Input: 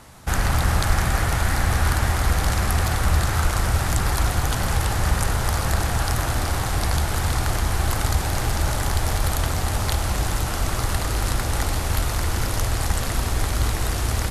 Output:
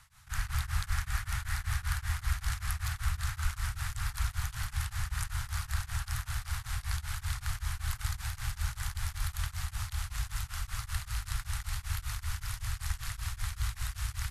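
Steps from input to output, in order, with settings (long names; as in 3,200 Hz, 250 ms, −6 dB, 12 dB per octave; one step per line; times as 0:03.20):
Chebyshev band-stop filter 100–1,400 Hz, order 2
tremolo along a rectified sine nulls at 5.2 Hz
level −9 dB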